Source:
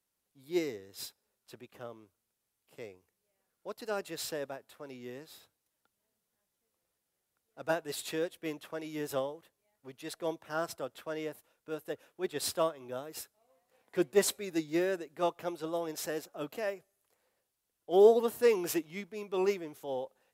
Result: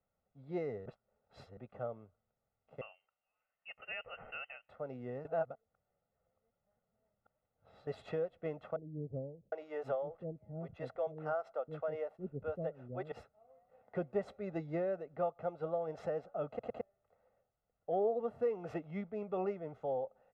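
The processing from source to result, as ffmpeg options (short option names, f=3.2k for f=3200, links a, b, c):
-filter_complex "[0:a]asettb=1/sr,asplit=3[a][b][c];[a]atrim=end=2.814[d];[b]atrim=start=2.81:end=4.69,asetpts=PTS-STARTPTS,afade=t=in:d=0.004:c=qsin,afade=t=out:st=1.876:d=0.004:c=qsin,lowpass=f=2.7k:t=q:w=0.5098,lowpass=f=2.7k:t=q:w=0.6013,lowpass=f=2.7k:t=q:w=0.9,lowpass=f=2.7k:t=q:w=2.563,afreqshift=-3200[e];[c]atrim=start=4.686[f];[d][e]acrossfade=d=0.004:c1=hsin:c2=qsin[g];[g][f]acrossfade=d=0.004:c1=qsin:c2=hsin,asettb=1/sr,asplit=3[h][i][j];[h]atrim=end=8.764[k];[i]atrim=start=8.76:end=13.12,asetpts=PTS-STARTPTS,afade=t=in:d=0.004:c=qsin,afade=t=out:st=4.356:d=0.004:c=qsin,acrossover=split=360[l][m];[m]adelay=760[n];[l][n]amix=inputs=2:normalize=0,atrim=end_sample=192276[o];[j]atrim=start=13.116[p];[k][o]acrossfade=d=0.004:c1=hsin:c2=qsin[q];[q][p]acrossfade=d=0.004:c1=qsin:c2=hsin,asplit=8[r][s][t][u][v][w][x][y];[r]atrim=end=0.862[z];[s]atrim=start=0.858:end=1.572,asetpts=PTS-STARTPTS,areverse[aa];[t]atrim=start=1.568:end=5.252[ab];[u]atrim=start=5.248:end=7.872,asetpts=PTS-STARTPTS,areverse[ac];[v]atrim=start=7.868:end=16.592[ad];[w]atrim=start=16.478:end=16.592[ae];[x]atrim=start=16.478:end=16.592[af];[y]atrim=start=16.808[ag];[z][aa]acrossfade=d=0.004:c1=hsin:c2=hsin[ah];[ah][ab]acrossfade=d=0.004:c1=hsin:c2=hsin[ai];[ai][ac]acrossfade=d=0.004:c1=hsin:c2=hsin[aj];[aj][ad]acrossfade=d=0.004:c1=hsin:c2=hsin[ak];[ak][ae]acrossfade=d=0.004:c1=hsin:c2=hsin[al];[al][af]acrossfade=d=0.004:c1=hsin:c2=hsin[am];[am][ag]acrossfade=d=0.004:c1=hsin:c2=hsin,lowpass=1k,aecho=1:1:1.5:0.72,acompressor=threshold=-39dB:ratio=3,volume=4dB"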